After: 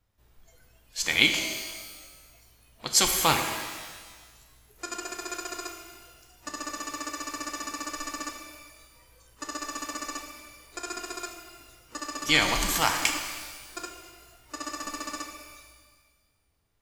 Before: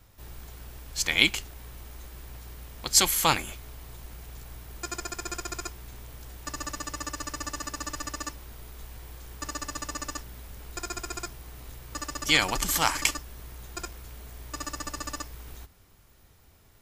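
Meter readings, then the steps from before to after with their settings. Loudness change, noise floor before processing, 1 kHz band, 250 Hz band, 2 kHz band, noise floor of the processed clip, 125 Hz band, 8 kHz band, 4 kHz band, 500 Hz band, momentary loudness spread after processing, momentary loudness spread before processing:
0.0 dB, -57 dBFS, +1.0 dB, +1.5 dB, +1.5 dB, -67 dBFS, -3.5 dB, -0.5 dB, +0.5 dB, +1.5 dB, 22 LU, 22 LU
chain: spectral noise reduction 17 dB; treble shelf 7.2 kHz -5 dB; pitch-shifted reverb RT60 1.5 s, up +12 st, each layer -8 dB, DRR 4.5 dB

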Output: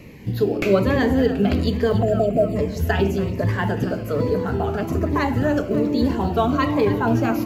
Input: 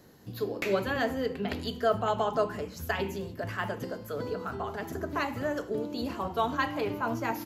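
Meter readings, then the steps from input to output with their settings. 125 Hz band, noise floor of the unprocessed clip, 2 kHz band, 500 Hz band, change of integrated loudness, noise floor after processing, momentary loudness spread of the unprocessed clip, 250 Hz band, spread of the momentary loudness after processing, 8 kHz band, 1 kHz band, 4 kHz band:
+17.0 dB, -45 dBFS, +6.0 dB, +10.5 dB, +11.0 dB, -29 dBFS, 8 LU, +14.5 dB, 5 LU, +5.5 dB, +6.0 dB, +5.5 dB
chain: spectral selection erased 2.03–2.56 s, 720–7000 Hz; tilt EQ -2 dB/octave; in parallel at -3 dB: peak limiter -21 dBFS, peak gain reduction 8.5 dB; on the sum: short-mantissa float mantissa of 6-bit; on a send: two-band feedback delay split 710 Hz, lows 159 ms, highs 282 ms, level -13 dB; on the sum: band noise 1.8–2.9 kHz -59 dBFS; Shepard-style phaser falling 1.2 Hz; trim +6.5 dB

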